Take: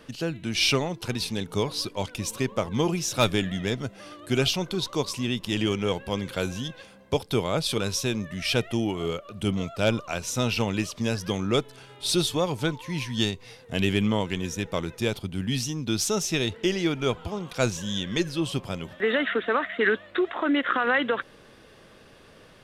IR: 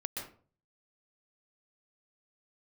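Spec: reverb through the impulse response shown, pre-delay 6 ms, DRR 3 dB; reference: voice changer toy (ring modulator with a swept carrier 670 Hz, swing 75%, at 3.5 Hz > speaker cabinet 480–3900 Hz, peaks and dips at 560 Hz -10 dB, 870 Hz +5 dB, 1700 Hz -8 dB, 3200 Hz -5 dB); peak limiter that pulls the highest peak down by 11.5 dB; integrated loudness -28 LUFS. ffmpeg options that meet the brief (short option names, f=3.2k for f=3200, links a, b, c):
-filter_complex "[0:a]alimiter=limit=-22dB:level=0:latency=1,asplit=2[a][b];[1:a]atrim=start_sample=2205,adelay=6[c];[b][c]afir=irnorm=-1:irlink=0,volume=-4dB[d];[a][d]amix=inputs=2:normalize=0,aeval=exprs='val(0)*sin(2*PI*670*n/s+670*0.75/3.5*sin(2*PI*3.5*n/s))':c=same,highpass=480,equalizer=f=560:t=q:w=4:g=-10,equalizer=f=870:t=q:w=4:g=5,equalizer=f=1.7k:t=q:w=4:g=-8,equalizer=f=3.2k:t=q:w=4:g=-5,lowpass=f=3.9k:w=0.5412,lowpass=f=3.9k:w=1.3066,volume=8dB"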